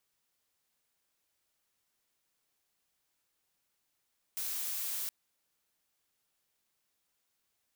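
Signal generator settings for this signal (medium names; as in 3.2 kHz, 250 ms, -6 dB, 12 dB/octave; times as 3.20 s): noise blue, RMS -36.5 dBFS 0.72 s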